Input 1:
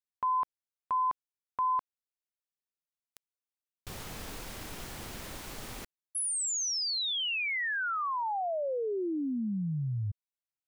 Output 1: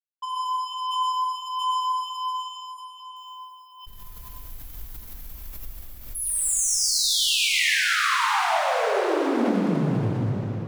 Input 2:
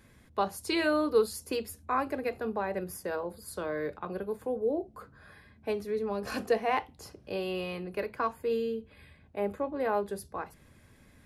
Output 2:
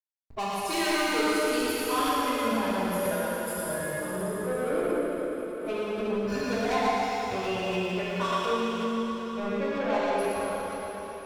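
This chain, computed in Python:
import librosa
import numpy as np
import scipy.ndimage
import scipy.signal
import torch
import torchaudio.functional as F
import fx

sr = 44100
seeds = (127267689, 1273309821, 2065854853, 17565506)

y = fx.bin_expand(x, sr, power=2.0)
y = fx.backlash(y, sr, play_db=-56.0)
y = fx.transient(y, sr, attack_db=4, sustain_db=-7)
y = 10.0 ** (-36.5 / 20.0) * np.tanh(y / 10.0 ** (-36.5 / 20.0))
y = fx.echo_thinned(y, sr, ms=115, feedback_pct=32, hz=320.0, wet_db=-3.5)
y = fx.rev_plate(y, sr, seeds[0], rt60_s=4.6, hf_ratio=1.0, predelay_ms=0, drr_db=-9.0)
y = fx.pre_swell(y, sr, db_per_s=63.0)
y = F.gain(torch.from_numpy(y), 5.0).numpy()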